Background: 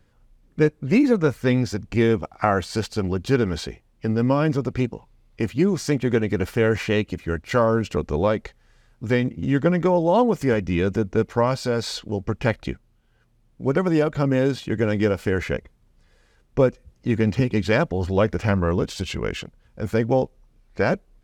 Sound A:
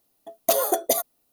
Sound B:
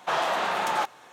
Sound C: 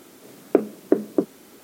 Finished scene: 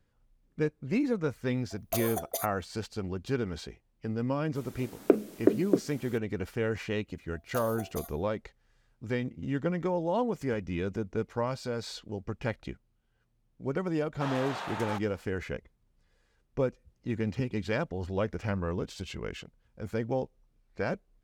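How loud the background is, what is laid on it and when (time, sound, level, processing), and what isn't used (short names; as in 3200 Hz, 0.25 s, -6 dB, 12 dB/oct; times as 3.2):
background -11 dB
1.44 add A -11.5 dB + HPF 450 Hz
4.55 add C -3 dB + dynamic EQ 980 Hz, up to -6 dB, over -37 dBFS, Q 1.1
7.06 add A -15 dB + resonator 75 Hz, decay 0.37 s
14.13 add B -11 dB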